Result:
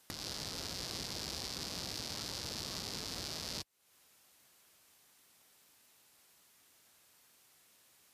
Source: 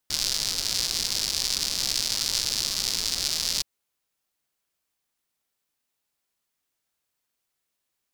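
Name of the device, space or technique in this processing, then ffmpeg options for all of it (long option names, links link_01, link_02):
podcast mastering chain: -af "highpass=67,deesser=0.75,acompressor=threshold=-52dB:ratio=3,alimiter=level_in=16dB:limit=-24dB:level=0:latency=1:release=400,volume=-16dB,volume=16dB" -ar 32000 -c:a libmp3lame -b:a 96k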